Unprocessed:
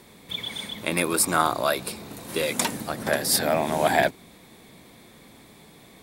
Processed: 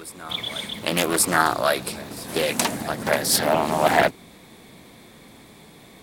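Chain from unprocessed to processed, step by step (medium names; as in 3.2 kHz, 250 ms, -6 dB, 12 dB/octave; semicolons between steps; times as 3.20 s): reverse echo 1130 ms -19.5 dB; loudspeaker Doppler distortion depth 0.39 ms; trim +3 dB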